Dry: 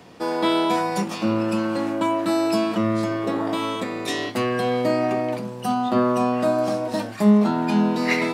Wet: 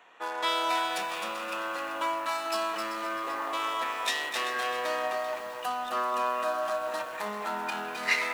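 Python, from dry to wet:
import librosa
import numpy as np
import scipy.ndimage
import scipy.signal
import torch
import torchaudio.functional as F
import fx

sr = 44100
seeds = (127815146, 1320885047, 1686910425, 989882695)

p1 = fx.wiener(x, sr, points=9)
p2 = fx.recorder_agc(p1, sr, target_db=-14.0, rise_db_per_s=8.1, max_gain_db=30)
p3 = scipy.signal.sosfilt(scipy.signal.butter(2, 1200.0, 'highpass', fs=sr, output='sos'), p2)
p4 = fx.notch(p3, sr, hz=2200.0, q=21.0)
p5 = p4 + fx.echo_alternate(p4, sr, ms=194, hz=2100.0, feedback_pct=72, wet_db=-9.0, dry=0)
y = fx.echo_crushed(p5, sr, ms=261, feedback_pct=35, bits=8, wet_db=-5.5)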